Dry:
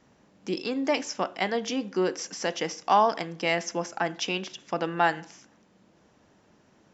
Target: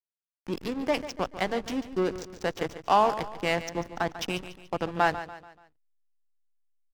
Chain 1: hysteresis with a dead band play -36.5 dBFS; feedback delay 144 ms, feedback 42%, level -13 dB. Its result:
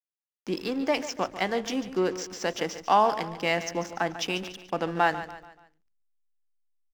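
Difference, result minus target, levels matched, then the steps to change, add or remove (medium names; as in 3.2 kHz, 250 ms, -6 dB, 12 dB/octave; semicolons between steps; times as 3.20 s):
hysteresis with a dead band: distortion -10 dB
change: hysteresis with a dead band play -25 dBFS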